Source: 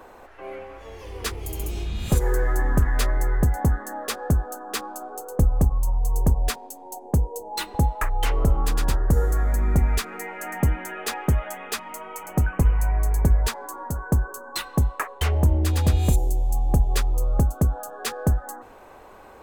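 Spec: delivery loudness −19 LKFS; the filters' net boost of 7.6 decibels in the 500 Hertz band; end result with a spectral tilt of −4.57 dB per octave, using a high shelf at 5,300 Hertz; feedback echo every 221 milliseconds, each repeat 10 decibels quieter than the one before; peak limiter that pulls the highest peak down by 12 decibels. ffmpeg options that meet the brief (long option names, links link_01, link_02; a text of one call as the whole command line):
ffmpeg -i in.wav -af "equalizer=frequency=500:width_type=o:gain=9,highshelf=frequency=5300:gain=8,alimiter=limit=-17dB:level=0:latency=1,aecho=1:1:221|442|663|884:0.316|0.101|0.0324|0.0104,volume=8dB" out.wav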